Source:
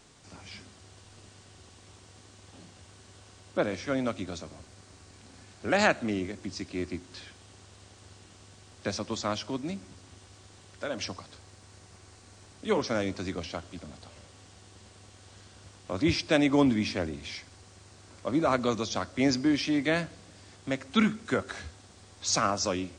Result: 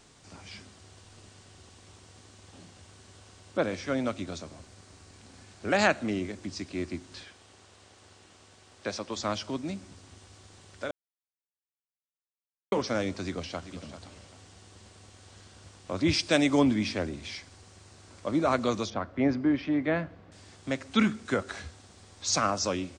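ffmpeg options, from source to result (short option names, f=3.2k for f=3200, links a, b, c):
-filter_complex "[0:a]asettb=1/sr,asplit=3[a][b][c];[a]atrim=end=7.234[d];[b]atrim=start=7.23:end=9.17,asetpts=PTS-STARTPTS,afade=t=in:d=0.004:c=qsin,afade=t=out:st=1.936:d=0.004:c=qsin,bass=f=250:g=-8,treble=f=4k:g=-3[e];[c]atrim=start=9.166[f];[d][e]acrossfade=d=0.004:c1=hsin:c2=qsin[g];[g][f]acrossfade=d=0.004:c1=qsin:c2=hsin,asplit=2[h][i];[i]afade=t=in:st=13.23:d=0.01,afade=t=out:st=13.74:d=0.01,aecho=0:1:390|780|1170:0.237137|0.0711412|0.0213424[j];[h][j]amix=inputs=2:normalize=0,asettb=1/sr,asplit=3[k][l][m];[k]atrim=end=16.134[n];[l]atrim=start=16.13:end=16.59,asetpts=PTS-STARTPTS,afade=t=in:d=0.004:c=qsin,afade=t=out:st=0.456:d=0.004:c=qsin,aemphasis=mode=production:type=cd[o];[m]atrim=start=16.586[p];[n][o]acrossfade=d=0.004:c1=hsin:c2=qsin[q];[q][p]acrossfade=d=0.004:c1=qsin:c2=hsin,asettb=1/sr,asplit=3[r][s][t];[r]atrim=end=18.904[u];[s]atrim=start=18.9:end=20.32,asetpts=PTS-STARTPTS,afade=t=in:d=0.004:c=qsin,afade=t=out:st=1.416:d=0.004:c=qsin,lowpass=1.8k[v];[t]atrim=start=20.316[w];[u][v]acrossfade=d=0.004:c1=hsin:c2=qsin[x];[x][w]acrossfade=d=0.004:c1=qsin:c2=hsin,asplit=3[y][z][aa];[y]atrim=end=10.91,asetpts=PTS-STARTPTS,afade=t=out:st=10.906:d=0.004:c=hsin[ab];[z]atrim=start=10.91:end=12.72,asetpts=PTS-STARTPTS,volume=0[ac];[aa]atrim=start=12.72,asetpts=PTS-STARTPTS,afade=t=in:d=0.004:c=hsin[ad];[ab][ac][ad]concat=n=3:v=0:a=1"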